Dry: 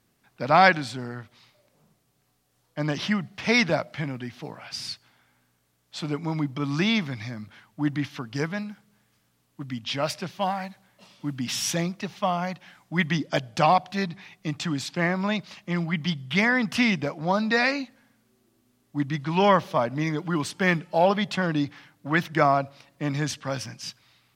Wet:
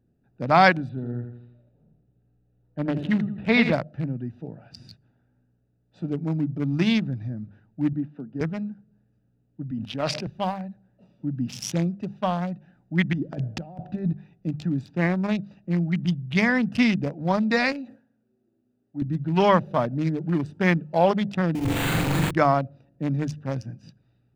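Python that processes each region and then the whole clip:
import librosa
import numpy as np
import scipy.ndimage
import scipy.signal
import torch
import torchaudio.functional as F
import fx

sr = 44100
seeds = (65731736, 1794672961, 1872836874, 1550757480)

y = fx.chain(x, sr, fx.steep_lowpass(hz=4200.0, slope=48),
    fx.echo_feedback(ms=83, feedback_pct=50, wet_db=-7.5), at=(0.89, 3.73))
y = fx.chain(y, sr, fx.highpass(hz=170.0, slope=24),
    fx.spacing_loss(db_at_10k=32), at=(7.93, 8.41))
y = fx.chain(y, sr, fx.bandpass_edges(low_hz=180.0, high_hz=5400.0),
    fx.sustainer(db_per_s=42.0), at=(9.71, 10.27))
y = fx.chain(y, sr, fx.lowpass(hz=3300.0, slope=6),
    fx.over_compress(threshold_db=-31.0, ratio=-1.0), at=(13.13, 14.13))
y = fx.chain(y, sr, fx.highpass(hz=410.0, slope=6),
    fx.sustainer(db_per_s=120.0), at=(17.72, 19.02))
y = fx.chain(y, sr, fx.clip_1bit(),
    fx.resample_bad(factor=8, down='none', up='hold'),
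    fx.room_flutter(wall_m=7.3, rt60_s=1.3), at=(21.55, 22.31))
y = fx.wiener(y, sr, points=41)
y = fx.low_shelf(y, sr, hz=260.0, db=6.5)
y = fx.hum_notches(y, sr, base_hz=50, count=4)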